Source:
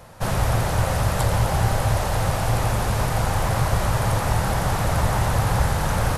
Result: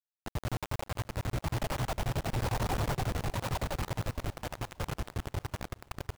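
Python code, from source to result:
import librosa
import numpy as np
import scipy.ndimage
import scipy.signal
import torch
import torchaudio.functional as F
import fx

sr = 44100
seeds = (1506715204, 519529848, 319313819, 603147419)

y = fx.doppler_pass(x, sr, speed_mps=19, closest_m=9.5, pass_at_s=2.71)
y = fx.dereverb_blind(y, sr, rt60_s=1.3)
y = scipy.signal.sosfilt(scipy.signal.butter(4, 1200.0, 'lowpass', fs=sr, output='sos'), y)
y = fx.peak_eq(y, sr, hz=130.0, db=2.5, octaves=0.2)
y = y * (1.0 - 0.93 / 2.0 + 0.93 / 2.0 * np.cos(2.0 * np.pi * 11.0 * (np.arange(len(y)) / sr)))
y = fx.rotary(y, sr, hz=1.0)
y = fx.quant_companded(y, sr, bits=2)
y = fx.echo_feedback(y, sr, ms=600, feedback_pct=55, wet_db=-23.5)
y = y * librosa.db_to_amplitude(-3.5)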